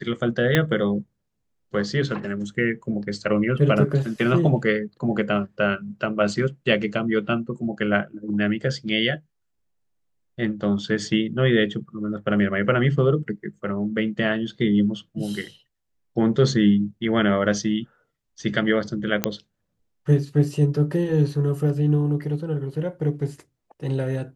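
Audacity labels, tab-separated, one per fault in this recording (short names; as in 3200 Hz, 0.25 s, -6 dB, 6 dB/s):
0.550000	0.550000	pop -5 dBFS
19.240000	19.240000	pop -4 dBFS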